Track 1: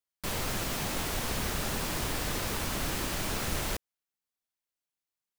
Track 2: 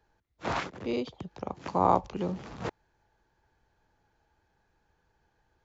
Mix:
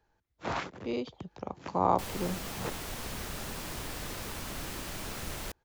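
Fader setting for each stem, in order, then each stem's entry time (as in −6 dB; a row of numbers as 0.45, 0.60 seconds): −6.5, −2.5 decibels; 1.75, 0.00 seconds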